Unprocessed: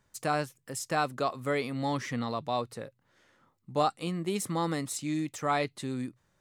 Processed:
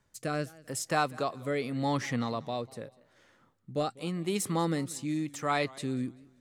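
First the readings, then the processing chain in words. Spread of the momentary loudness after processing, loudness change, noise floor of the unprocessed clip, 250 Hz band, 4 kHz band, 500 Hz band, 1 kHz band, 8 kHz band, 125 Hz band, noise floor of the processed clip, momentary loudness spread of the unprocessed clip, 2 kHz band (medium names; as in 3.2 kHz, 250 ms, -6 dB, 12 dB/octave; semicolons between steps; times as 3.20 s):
8 LU, -0.5 dB, -73 dBFS, +0.5 dB, -0.5 dB, -0.5 dB, -2.5 dB, 0.0 dB, +1.0 dB, -67 dBFS, 8 LU, 0.0 dB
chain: rotary cabinet horn 0.85 Hz; modulated delay 194 ms, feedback 33%, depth 155 cents, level -22 dB; trim +2 dB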